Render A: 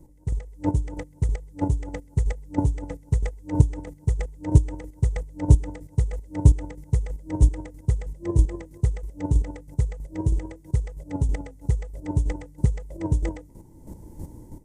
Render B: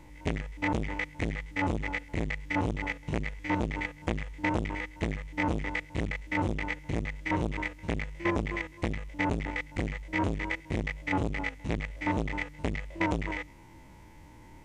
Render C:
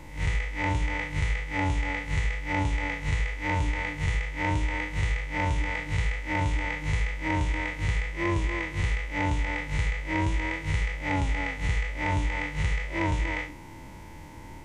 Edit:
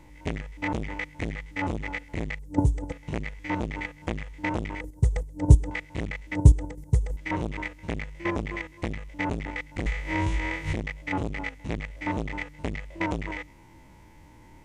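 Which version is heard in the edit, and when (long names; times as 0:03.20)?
B
0:02.39–0:02.92: punch in from A
0:04.81–0:05.71: punch in from A
0:06.35–0:07.17: punch in from A
0:09.86–0:10.73: punch in from C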